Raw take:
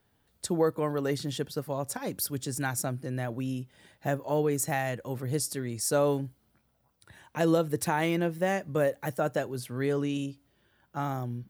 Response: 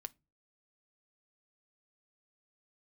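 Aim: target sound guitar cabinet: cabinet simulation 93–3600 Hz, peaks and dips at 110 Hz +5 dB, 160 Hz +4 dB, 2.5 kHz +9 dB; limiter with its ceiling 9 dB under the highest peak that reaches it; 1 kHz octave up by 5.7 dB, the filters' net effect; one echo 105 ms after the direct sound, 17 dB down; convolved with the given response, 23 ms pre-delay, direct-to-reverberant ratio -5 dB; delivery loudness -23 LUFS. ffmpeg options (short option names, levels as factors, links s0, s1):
-filter_complex "[0:a]equalizer=f=1000:t=o:g=7.5,alimiter=limit=0.119:level=0:latency=1,aecho=1:1:105:0.141,asplit=2[s0][s1];[1:a]atrim=start_sample=2205,adelay=23[s2];[s1][s2]afir=irnorm=-1:irlink=0,volume=2.99[s3];[s0][s3]amix=inputs=2:normalize=0,highpass=93,equalizer=f=110:t=q:w=4:g=5,equalizer=f=160:t=q:w=4:g=4,equalizer=f=2500:t=q:w=4:g=9,lowpass=f=3600:w=0.5412,lowpass=f=3600:w=1.3066,volume=1.19"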